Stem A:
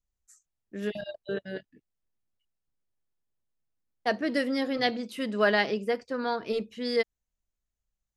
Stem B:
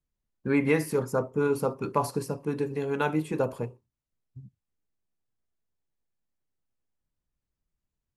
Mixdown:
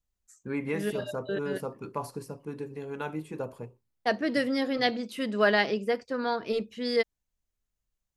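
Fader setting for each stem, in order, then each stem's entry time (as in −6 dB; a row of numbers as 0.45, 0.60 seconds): +0.5, −8.0 decibels; 0.00, 0.00 seconds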